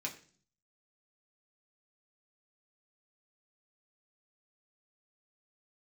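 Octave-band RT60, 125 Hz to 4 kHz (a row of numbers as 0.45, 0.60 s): 0.80, 0.70, 0.50, 0.40, 0.40, 0.50 s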